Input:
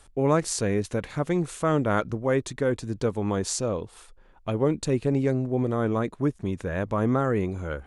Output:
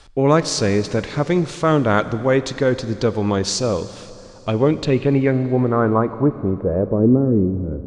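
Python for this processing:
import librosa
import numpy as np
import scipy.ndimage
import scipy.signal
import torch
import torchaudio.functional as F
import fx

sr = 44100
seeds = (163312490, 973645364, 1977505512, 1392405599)

y = fx.filter_sweep_lowpass(x, sr, from_hz=4900.0, to_hz=290.0, start_s=4.49, end_s=7.33, q=1.8)
y = fx.rev_schroeder(y, sr, rt60_s=3.1, comb_ms=32, drr_db=13.5)
y = y * librosa.db_to_amplitude(7.0)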